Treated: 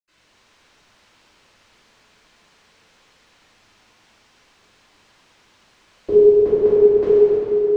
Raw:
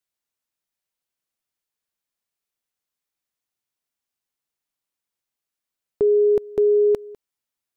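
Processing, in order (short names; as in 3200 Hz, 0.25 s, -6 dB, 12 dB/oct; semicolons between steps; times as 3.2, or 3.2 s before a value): upward compressor, threshold -39 dBFS; air absorption 140 m; reverb RT60 3.7 s, pre-delay 77 ms, DRR -60 dB; gain +5 dB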